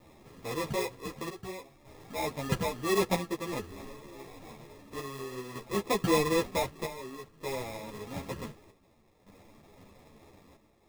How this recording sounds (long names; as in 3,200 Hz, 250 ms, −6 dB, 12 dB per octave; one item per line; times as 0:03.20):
a quantiser's noise floor 10 bits, dither none
chopped level 0.54 Hz, depth 65%, duty 70%
aliases and images of a low sample rate 1,500 Hz, jitter 0%
a shimmering, thickened sound